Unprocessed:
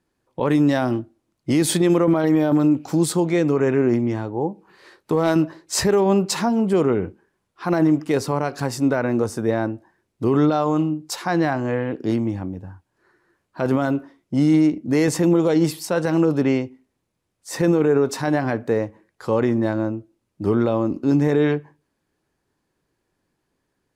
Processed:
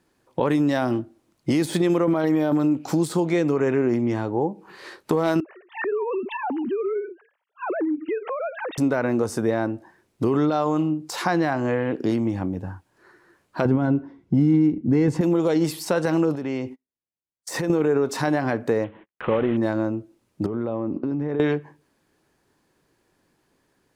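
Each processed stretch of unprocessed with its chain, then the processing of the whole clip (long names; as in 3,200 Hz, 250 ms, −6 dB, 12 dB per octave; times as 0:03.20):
0:05.40–0:08.78: three sine waves on the formant tracks + downward compressor 2.5 to 1, threshold −35 dBFS
0:13.65–0:15.21: RIAA equalisation playback + notch comb filter 610 Hz
0:16.35–0:17.70: noise gate −45 dBFS, range −33 dB + downward compressor 4 to 1, threshold −29 dBFS
0:18.84–0:19.57: variable-slope delta modulation 16 kbit/s + noise gate −58 dBFS, range −35 dB
0:20.46–0:21.40: high-pass filter 55 Hz + downward compressor 10 to 1, threshold −25 dBFS + head-to-tape spacing loss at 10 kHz 35 dB
whole clip: downward compressor 2.5 to 1, threshold −29 dBFS; low-shelf EQ 120 Hz −6 dB; de-essing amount 75%; level +7.5 dB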